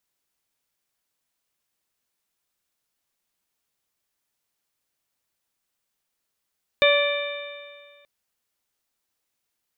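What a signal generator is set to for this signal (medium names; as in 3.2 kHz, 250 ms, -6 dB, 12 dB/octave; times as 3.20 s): stretched partials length 1.23 s, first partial 574 Hz, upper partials -10/-8.5/-3/-16.5/-5 dB, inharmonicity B 0.003, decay 1.84 s, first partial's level -15.5 dB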